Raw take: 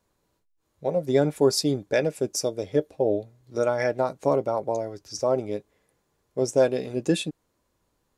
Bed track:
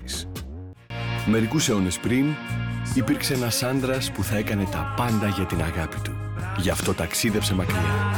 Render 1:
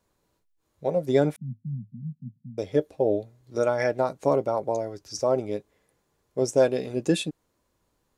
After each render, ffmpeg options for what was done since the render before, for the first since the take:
-filter_complex "[0:a]asettb=1/sr,asplit=3[a][b][c];[a]atrim=end=1.364[d];[b]atrim=start=1.36:end=2.58,asetpts=PTS-STARTPTS,afade=t=in:d=0.004:c=qsin,afade=t=out:st=1.216:d=0.004:c=qsin,asuperpass=centerf=160:order=20:qfactor=1.2[e];[c]atrim=start=2.576[f];[d][e]acrossfade=d=0.004:c1=hsin:c2=qsin[g];[g][f]acrossfade=d=0.004:c1=qsin:c2=hsin"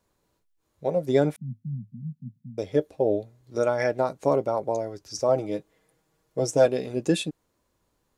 -filter_complex "[0:a]asettb=1/sr,asplit=3[a][b][c];[a]atrim=end=5.284[d];[b]atrim=start=5.28:end=6.66,asetpts=PTS-STARTPTS,afade=t=in:d=0.004:c=qsin,afade=t=out:st=1.376:d=0.004:c=qsin,aecho=1:1:6.3:0.65,atrim=end_sample=60858[e];[c]atrim=start=6.656[f];[d][e]acrossfade=d=0.004:c1=hsin:c2=qsin[g];[g][f]acrossfade=d=0.004:c1=qsin:c2=hsin"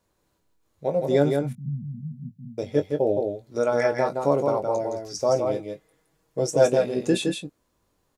-filter_complex "[0:a]asplit=2[a][b];[b]adelay=21,volume=-9dB[c];[a][c]amix=inputs=2:normalize=0,aecho=1:1:166:0.596"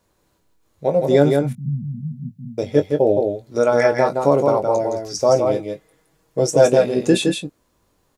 -af "volume=6.5dB,alimiter=limit=-2dB:level=0:latency=1"

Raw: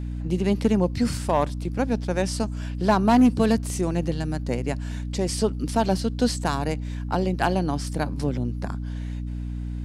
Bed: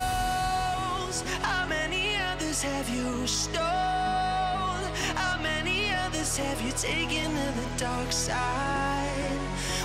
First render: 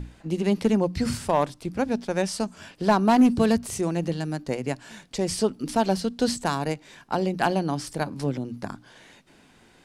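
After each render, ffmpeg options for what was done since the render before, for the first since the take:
-af "bandreject=f=60:t=h:w=6,bandreject=f=120:t=h:w=6,bandreject=f=180:t=h:w=6,bandreject=f=240:t=h:w=6,bandreject=f=300:t=h:w=6"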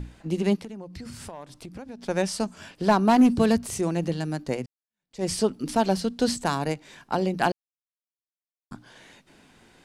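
-filter_complex "[0:a]asplit=3[a][b][c];[a]afade=t=out:st=0.55:d=0.02[d];[b]acompressor=threshold=-36dB:ratio=8:attack=3.2:release=140:knee=1:detection=peak,afade=t=in:st=0.55:d=0.02,afade=t=out:st=2.02:d=0.02[e];[c]afade=t=in:st=2.02:d=0.02[f];[d][e][f]amix=inputs=3:normalize=0,asplit=4[g][h][i][j];[g]atrim=end=4.66,asetpts=PTS-STARTPTS,afade=t=out:st=4.656:d=0.004:c=hsin[k];[h]atrim=start=4.66:end=7.52,asetpts=PTS-STARTPTS,afade=t=in:d=0.58:c=exp,afade=t=out:st=2.856:d=0.004:c=hsin[l];[i]atrim=start=7.52:end=8.71,asetpts=PTS-STARTPTS,volume=0[m];[j]atrim=start=8.71,asetpts=PTS-STARTPTS,afade=t=in:d=0.004:c=hsin[n];[k][l][m][n]concat=n=4:v=0:a=1"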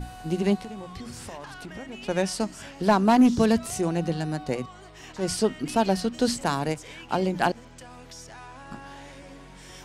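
-filter_complex "[1:a]volume=-15.5dB[a];[0:a][a]amix=inputs=2:normalize=0"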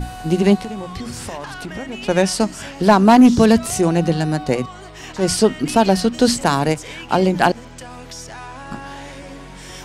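-af "volume=9.5dB,alimiter=limit=-3dB:level=0:latency=1"

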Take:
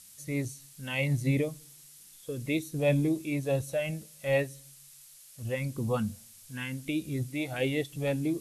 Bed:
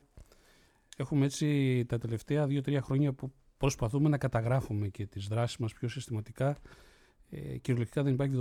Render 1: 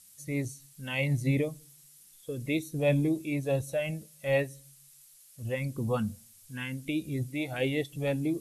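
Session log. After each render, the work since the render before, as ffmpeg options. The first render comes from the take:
-af "afftdn=nr=6:nf=-54"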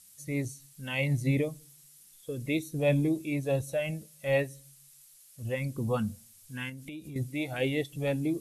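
-filter_complex "[0:a]asettb=1/sr,asplit=3[a][b][c];[a]atrim=end=6.694[d];[b]atrim=start=6.69:end=7.16,asetpts=PTS-STARTPTS,afade=t=in:d=0.004:c=qsin,afade=t=out:st=0.466:d=0.004:c=qsin,acompressor=threshold=-39dB:ratio=6:attack=3.2:release=140:knee=1:detection=peak[e];[c]atrim=start=7.156[f];[d][e]acrossfade=d=0.004:c1=hsin:c2=qsin[g];[g][f]acrossfade=d=0.004:c1=qsin:c2=hsin"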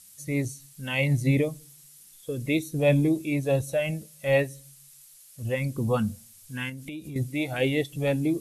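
-af "volume=4.5dB"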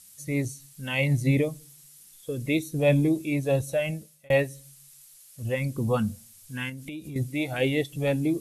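-filter_complex "[0:a]asplit=2[a][b];[a]atrim=end=4.3,asetpts=PTS-STARTPTS,afade=t=out:st=3.74:d=0.56:c=qsin[c];[b]atrim=start=4.3,asetpts=PTS-STARTPTS,afade=t=in:d=0.004:c=hsin[d];[c][d]concat=n=2:v=0:a=1"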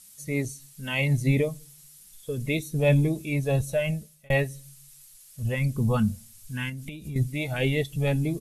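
-af "aecho=1:1:4.7:0.36,asubboost=boost=4:cutoff=140"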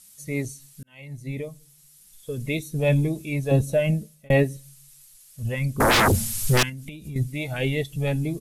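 -filter_complex "[0:a]asettb=1/sr,asplit=3[a][b][c];[a]atrim=end=3.514[d];[b]atrim=start=3.51:end=4.57,asetpts=PTS-STARTPTS,afade=t=in:d=0.004:c=qsin,afade=t=out:st=1.056:d=0.004:c=qsin,equalizer=f=280:t=o:w=1.7:g=11.5[e];[c]atrim=start=4.566[f];[d][e]acrossfade=d=0.004:c1=hsin:c2=qsin[g];[g][f]acrossfade=d=0.004:c1=qsin:c2=hsin,asettb=1/sr,asplit=3[h][i][j];[h]atrim=end=5.804[k];[i]atrim=start=5.8:end=6.63,asetpts=PTS-STARTPTS,afade=t=in:d=0.004:c=qsin,afade=t=out:st=0.826:d=0.004:c=qsin,aeval=exprs='0.188*sin(PI/2*7.94*val(0)/0.188)':c=same[l];[j]atrim=start=6.626[m];[k][l]acrossfade=d=0.004:c1=hsin:c2=qsin[n];[n][m]acrossfade=d=0.004:c1=qsin:c2=hsin,asplit=2[o][p];[o]atrim=end=0.83,asetpts=PTS-STARTPTS,afade=t=out:st=0.826:d=0.004:c=hsin[q];[p]atrim=start=0.83,asetpts=PTS-STARTPTS,afade=t=in:d=1.49[r];[q][r]concat=n=2:v=0:a=1"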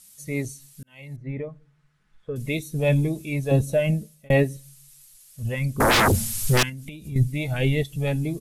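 -filter_complex "[0:a]asettb=1/sr,asplit=3[a][b][c];[a]atrim=end=1.164[d];[b]atrim=start=1.16:end=2.36,asetpts=PTS-STARTPTS,afade=t=in:d=0.004:c=qsin,afade=t=out:st=1.196:d=0.004:c=qsin,lowpass=f=1.5k:t=q:w=1.9[e];[c]atrim=start=2.356[f];[d][e]acrossfade=d=0.004:c1=hsin:c2=qsin[g];[g][f]acrossfade=d=0.004:c1=qsin:c2=hsin,asettb=1/sr,asplit=3[h][i][j];[h]atrim=end=7.124[k];[i]atrim=start=7.12:end=7.83,asetpts=PTS-STARTPTS,afade=t=in:d=0.004:c=qsin,afade=t=out:st=0.706:d=0.004:c=qsin,lowshelf=f=130:g=10[l];[j]atrim=start=7.826[m];[k][l]acrossfade=d=0.004:c1=hsin:c2=qsin[n];[n][m]acrossfade=d=0.004:c1=qsin:c2=hsin"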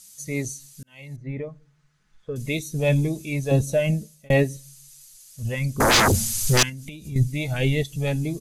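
-af "equalizer=f=5.8k:t=o:w=0.75:g=10.5,bandreject=f=5.5k:w=11"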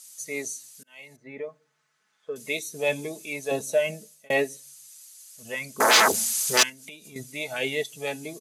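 -af "highpass=460,aecho=1:1:4.6:0.33"

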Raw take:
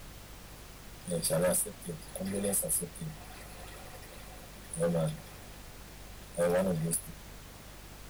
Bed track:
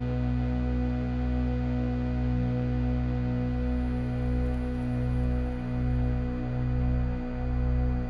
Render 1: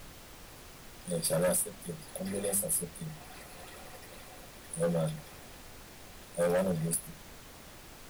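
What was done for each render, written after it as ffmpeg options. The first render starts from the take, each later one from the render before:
-af "bandreject=f=50:t=h:w=4,bandreject=f=100:t=h:w=4,bandreject=f=150:t=h:w=4,bandreject=f=200:t=h:w=4"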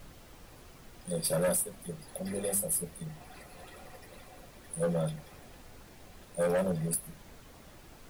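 -af "afftdn=nr=6:nf=-51"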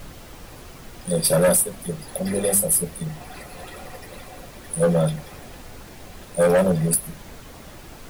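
-af "volume=11.5dB"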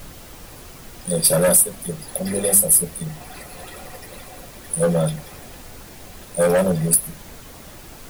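-af "highshelf=f=5.7k:g=6.5"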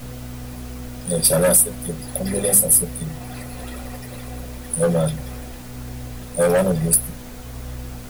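-filter_complex "[1:a]volume=-6.5dB[a];[0:a][a]amix=inputs=2:normalize=0"

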